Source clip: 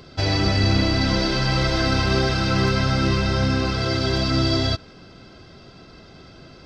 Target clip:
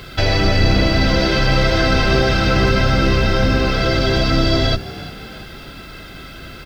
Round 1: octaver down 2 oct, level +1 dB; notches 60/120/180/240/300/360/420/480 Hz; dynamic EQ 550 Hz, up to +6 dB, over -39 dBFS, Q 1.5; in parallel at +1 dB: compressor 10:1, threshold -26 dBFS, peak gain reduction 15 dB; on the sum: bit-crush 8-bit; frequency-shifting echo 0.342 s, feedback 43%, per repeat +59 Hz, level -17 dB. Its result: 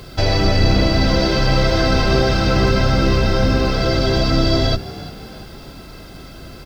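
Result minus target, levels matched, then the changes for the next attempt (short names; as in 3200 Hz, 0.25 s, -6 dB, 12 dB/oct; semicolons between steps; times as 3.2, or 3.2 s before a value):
2000 Hz band -3.5 dB
add after compressor: band shelf 2200 Hz +11.5 dB 1.9 oct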